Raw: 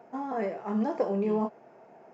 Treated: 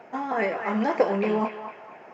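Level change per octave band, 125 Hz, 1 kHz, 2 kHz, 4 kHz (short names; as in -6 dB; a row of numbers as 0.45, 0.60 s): +2.0 dB, +7.0 dB, +15.0 dB, n/a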